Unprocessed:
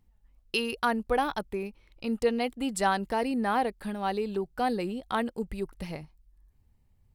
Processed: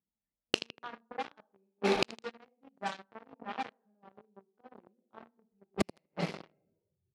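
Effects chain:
0:05.20–0:05.89: lower of the sound and its delayed copy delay 0.39 ms
coupled-rooms reverb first 0.61 s, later 1.9 s, DRR 0.5 dB
noise reduction from a noise print of the clip's start 16 dB
gate with flip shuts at −29 dBFS, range −37 dB
repeating echo 80 ms, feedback 59%, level −20.5 dB
leveller curve on the samples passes 5
low-pass that shuts in the quiet parts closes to 630 Hz, open at −35 dBFS
band-pass filter 170–5,700 Hz
bass and treble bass 0 dB, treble +6 dB
level +6 dB

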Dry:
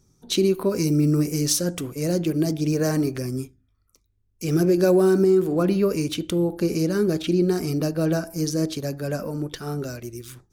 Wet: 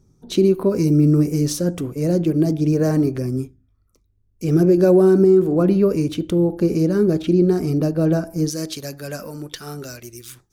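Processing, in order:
tilt shelving filter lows +5.5 dB, about 1,200 Hz, from 0:08.48 lows −4.5 dB

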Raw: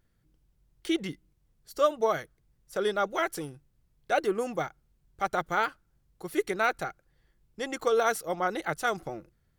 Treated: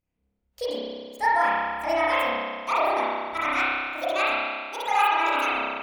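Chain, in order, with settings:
gliding playback speed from 144% → 185%
spring reverb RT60 1.8 s, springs 30 ms, chirp 40 ms, DRR −9.5 dB
noise reduction from a noise print of the clip's start 12 dB
level −4 dB

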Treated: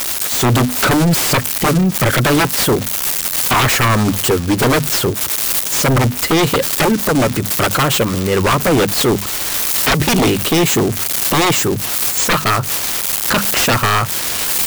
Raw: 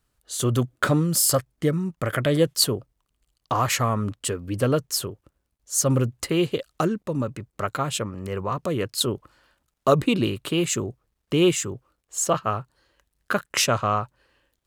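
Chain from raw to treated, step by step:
spike at every zero crossing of −14.5 dBFS
harmonic and percussive parts rebalanced harmonic −6 dB
mains-hum notches 50/100/150/200/250 Hz
downward compressor 2.5 to 1, threshold −24 dBFS, peak gain reduction 8 dB
sine wavefolder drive 17 dB, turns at −11 dBFS
level +2 dB

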